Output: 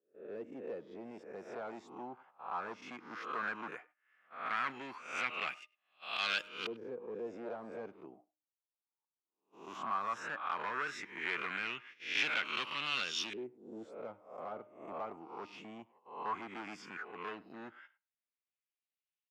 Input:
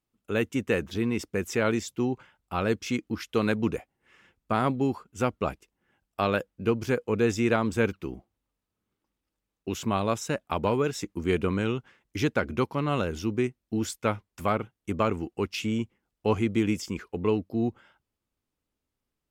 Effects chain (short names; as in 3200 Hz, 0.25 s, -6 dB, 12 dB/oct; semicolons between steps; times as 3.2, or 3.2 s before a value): spectral swells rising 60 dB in 0.54 s; HPF 110 Hz 24 dB/oct; de-hum 305.6 Hz, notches 4; gate -46 dBFS, range -14 dB; dynamic EQ 530 Hz, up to -6 dB, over -38 dBFS, Q 1.5; overloaded stage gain 24.5 dB; LFO low-pass saw up 0.15 Hz 420–3700 Hz; differentiator; speakerphone echo 0.1 s, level -22 dB; gain +7.5 dB